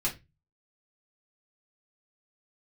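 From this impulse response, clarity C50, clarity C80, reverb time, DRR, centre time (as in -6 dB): 13.5 dB, 21.5 dB, 0.20 s, -5.5 dB, 16 ms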